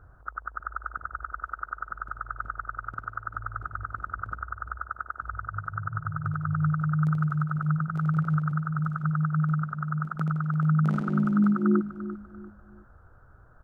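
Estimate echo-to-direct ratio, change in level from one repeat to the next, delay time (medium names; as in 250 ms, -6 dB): -12.5 dB, -9.0 dB, 344 ms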